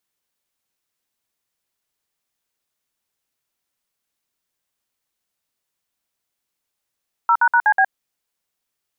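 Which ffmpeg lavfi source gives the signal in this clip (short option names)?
-f lavfi -i "aevalsrc='0.2*clip(min(mod(t,0.123),0.065-mod(t,0.123))/0.002,0,1)*(eq(floor(t/0.123),0)*(sin(2*PI*941*mod(t,0.123))+sin(2*PI*1336*mod(t,0.123)))+eq(floor(t/0.123),1)*(sin(2*PI*941*mod(t,0.123))+sin(2*PI*1477*mod(t,0.123)))+eq(floor(t/0.123),2)*(sin(2*PI*941*mod(t,0.123))+sin(2*PI*1477*mod(t,0.123)))+eq(floor(t/0.123),3)*(sin(2*PI*852*mod(t,0.123))+sin(2*PI*1633*mod(t,0.123)))+eq(floor(t/0.123),4)*(sin(2*PI*770*mod(t,0.123))+sin(2*PI*1633*mod(t,0.123))))':d=0.615:s=44100"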